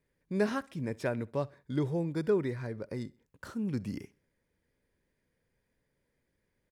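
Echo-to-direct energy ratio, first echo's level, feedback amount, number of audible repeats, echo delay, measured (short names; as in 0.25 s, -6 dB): -23.0 dB, -24.0 dB, 41%, 2, 65 ms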